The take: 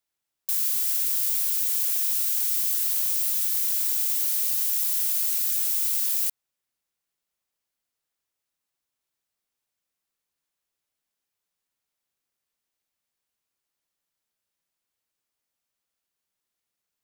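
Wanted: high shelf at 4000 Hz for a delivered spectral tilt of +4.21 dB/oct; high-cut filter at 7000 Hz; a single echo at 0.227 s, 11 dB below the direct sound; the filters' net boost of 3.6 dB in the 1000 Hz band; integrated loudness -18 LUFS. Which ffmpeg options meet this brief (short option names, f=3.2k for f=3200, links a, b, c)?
-af "lowpass=7k,equalizer=f=1k:t=o:g=4,highshelf=f=4k:g=6.5,aecho=1:1:227:0.282,volume=11dB"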